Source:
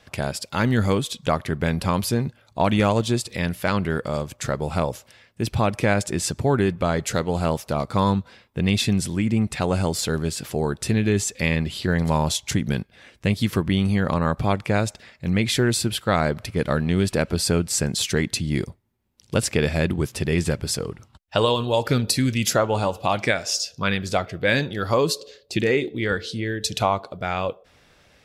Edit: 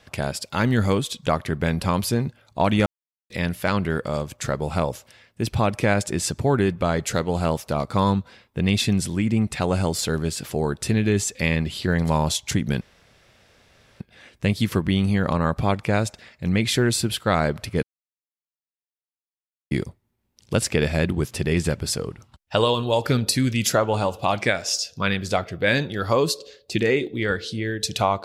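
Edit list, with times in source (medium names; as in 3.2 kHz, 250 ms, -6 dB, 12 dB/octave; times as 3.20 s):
2.86–3.30 s: mute
12.81 s: insert room tone 1.19 s
16.64–18.52 s: mute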